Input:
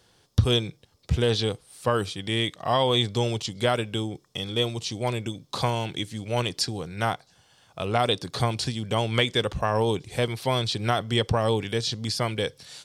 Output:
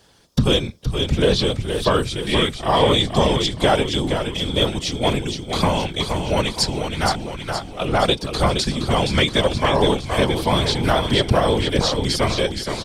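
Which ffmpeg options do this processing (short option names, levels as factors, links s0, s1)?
-filter_complex "[0:a]acontrast=81,asplit=8[s0][s1][s2][s3][s4][s5][s6][s7];[s1]adelay=470,afreqshift=-34,volume=0.501[s8];[s2]adelay=940,afreqshift=-68,volume=0.269[s9];[s3]adelay=1410,afreqshift=-102,volume=0.146[s10];[s4]adelay=1880,afreqshift=-136,volume=0.0785[s11];[s5]adelay=2350,afreqshift=-170,volume=0.0427[s12];[s6]adelay=2820,afreqshift=-204,volume=0.0229[s13];[s7]adelay=3290,afreqshift=-238,volume=0.0124[s14];[s0][s8][s9][s10][s11][s12][s13][s14]amix=inputs=8:normalize=0,afftfilt=real='hypot(re,im)*cos(2*PI*random(0))':imag='hypot(re,im)*sin(2*PI*random(1))':win_size=512:overlap=0.75,volume=1.78"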